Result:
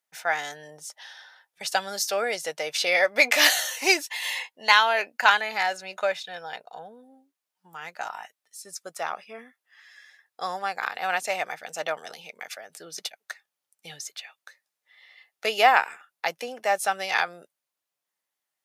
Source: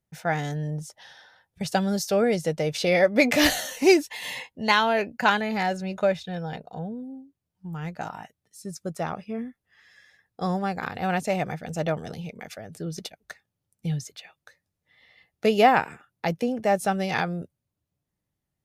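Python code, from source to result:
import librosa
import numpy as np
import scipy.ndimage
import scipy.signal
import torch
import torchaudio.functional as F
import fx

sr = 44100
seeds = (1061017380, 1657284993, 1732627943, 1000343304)

y = scipy.signal.sosfilt(scipy.signal.butter(2, 900.0, 'highpass', fs=sr, output='sos'), x)
y = y * librosa.db_to_amplitude(4.5)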